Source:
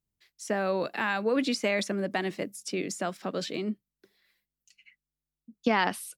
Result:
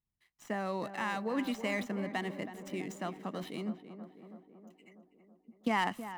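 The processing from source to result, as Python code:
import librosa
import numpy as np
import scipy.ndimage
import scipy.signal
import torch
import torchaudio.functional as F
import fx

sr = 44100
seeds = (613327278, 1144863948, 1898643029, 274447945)

y = scipy.ndimage.median_filter(x, 9, mode='constant')
y = y + 0.41 * np.pad(y, (int(1.0 * sr / 1000.0), 0))[:len(y)]
y = fx.echo_tape(y, sr, ms=324, feedback_pct=75, wet_db=-9.5, lp_hz=1400.0, drive_db=16.0, wow_cents=22)
y = y * 10.0 ** (-6.0 / 20.0)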